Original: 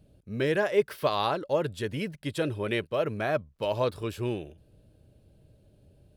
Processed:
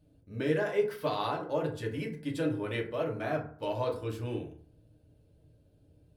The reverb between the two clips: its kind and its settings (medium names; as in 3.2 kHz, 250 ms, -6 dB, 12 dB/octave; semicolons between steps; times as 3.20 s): FDN reverb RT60 0.51 s, low-frequency decay 1.1×, high-frequency decay 0.45×, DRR -1.5 dB; trim -8.5 dB